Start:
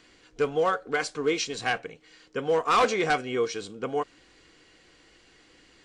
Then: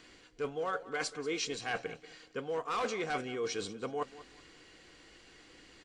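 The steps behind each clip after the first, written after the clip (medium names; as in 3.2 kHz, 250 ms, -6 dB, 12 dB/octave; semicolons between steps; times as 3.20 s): reverse; compression 6:1, threshold -33 dBFS, peak gain reduction 13 dB; reverse; feedback delay 188 ms, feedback 29%, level -17 dB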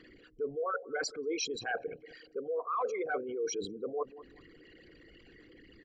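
resonances exaggerated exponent 3; trim +1 dB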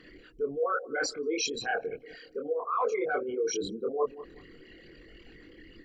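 chorus voices 6, 0.99 Hz, delay 24 ms, depth 3.2 ms; trim +7.5 dB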